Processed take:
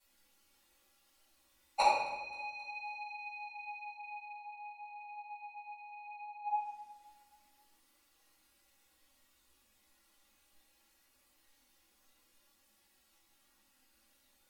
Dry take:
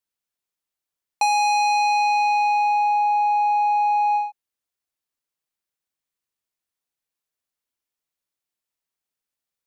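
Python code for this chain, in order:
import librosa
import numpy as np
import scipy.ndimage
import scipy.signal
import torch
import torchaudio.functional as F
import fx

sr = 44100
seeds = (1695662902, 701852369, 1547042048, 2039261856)

p1 = fx.env_lowpass_down(x, sr, base_hz=2800.0, full_db=-23.0)
p2 = fx.notch(p1, sr, hz=660.0, q=12.0)
p3 = p2 + 0.67 * np.pad(p2, (int(3.6 * sr / 1000.0), 0))[:len(p2)]
p4 = fx.stretch_vocoder_free(p3, sr, factor=1.5)
p5 = fx.gate_flip(p4, sr, shuts_db=-26.0, range_db=-38)
p6 = fx.chorus_voices(p5, sr, voices=6, hz=0.56, base_ms=17, depth_ms=2.8, mix_pct=30)
p7 = p6 + fx.echo_feedback(p6, sr, ms=265, feedback_pct=52, wet_db=-22.5, dry=0)
p8 = fx.room_shoebox(p7, sr, seeds[0], volume_m3=430.0, walls='mixed', distance_m=7.2)
y = F.gain(torch.from_numpy(p8), 7.5).numpy()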